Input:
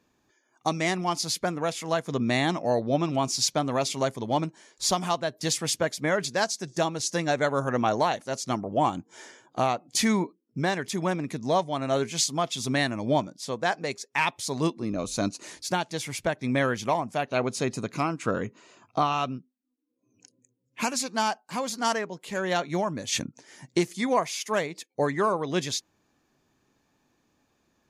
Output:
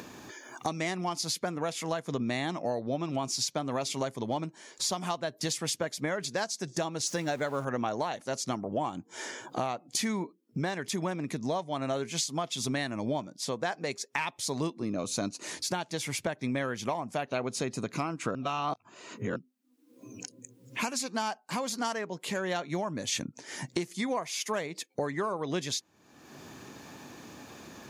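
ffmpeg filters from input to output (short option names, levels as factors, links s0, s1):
-filter_complex "[0:a]asettb=1/sr,asplit=3[s0][s1][s2];[s0]atrim=end=7.064[s3];[s1]atrim=start=7.06:end=7.65,asetpts=PTS-STARTPTS,afade=t=in:d=0.004:c=qsin,afade=t=out:st=0.586:d=0.004:c=qsin,aeval=exprs='val(0)+0.5*0.0112*sgn(val(0))':c=same[s4];[s2]atrim=start=7.646[s5];[s3][s4]acrossfade=d=0.004:c1=hsin:c2=qsin[s6];[s6][s5]acrossfade=d=0.004:c1=qsin:c2=hsin,asplit=3[s7][s8][s9];[s7]atrim=end=18.352[s10];[s8]atrim=start=18.348:end=19.362,asetpts=PTS-STARTPTS,areverse[s11];[s9]atrim=start=19.358[s12];[s10][s11]acrossfade=d=0.004:c1=hsin:c2=hsin[s13];[s13][s12]acrossfade=d=0.004:c1=hsin:c2=hsin,acompressor=mode=upward:threshold=0.0398:ratio=2.5,highpass=93,acompressor=threshold=0.0398:ratio=6"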